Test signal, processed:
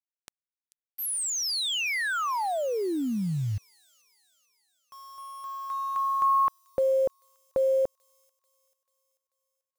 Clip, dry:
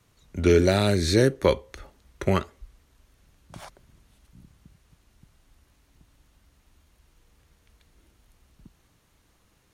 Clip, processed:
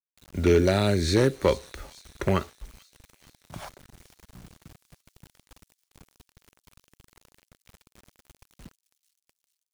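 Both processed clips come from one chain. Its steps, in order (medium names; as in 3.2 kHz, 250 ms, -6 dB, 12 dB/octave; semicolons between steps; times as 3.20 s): low-pass 12 kHz 24 dB/octave; treble shelf 3.3 kHz -2.5 dB; in parallel at -2 dB: compression 10:1, threshold -33 dBFS; on the sum: wavefolder -9 dBFS; bit crusher 8-bit; on a send: feedback echo behind a high-pass 439 ms, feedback 55%, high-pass 4.8 kHz, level -12 dB; on the sum: trim -2 dB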